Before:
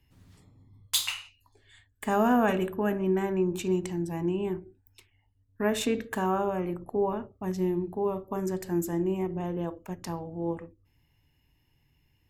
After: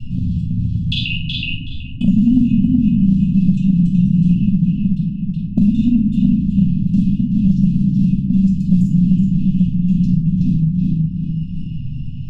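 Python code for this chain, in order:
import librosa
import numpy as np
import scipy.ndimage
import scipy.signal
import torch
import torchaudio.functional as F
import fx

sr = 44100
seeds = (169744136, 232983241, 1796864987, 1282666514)

p1 = fx.local_reverse(x, sr, ms=34.0)
p2 = fx.dereverb_blind(p1, sr, rt60_s=1.2)
p3 = fx.low_shelf(p2, sr, hz=390.0, db=10.0)
p4 = np.sign(p3) * np.maximum(np.abs(p3) - 10.0 ** (-40.0 / 20.0), 0.0)
p5 = p3 + (p4 * librosa.db_to_amplitude(-5.5))
p6 = fx.quant_float(p5, sr, bits=4)
p7 = fx.rotary(p6, sr, hz=1.1)
p8 = fx.brickwall_bandstop(p7, sr, low_hz=280.0, high_hz=2500.0)
p9 = fx.spacing_loss(p8, sr, db_at_10k=26)
p10 = p9 + fx.echo_filtered(p9, sr, ms=373, feedback_pct=18, hz=3500.0, wet_db=-4.5, dry=0)
p11 = fx.room_shoebox(p10, sr, seeds[0], volume_m3=500.0, walls='furnished', distance_m=7.0)
y = fx.band_squash(p11, sr, depth_pct=100)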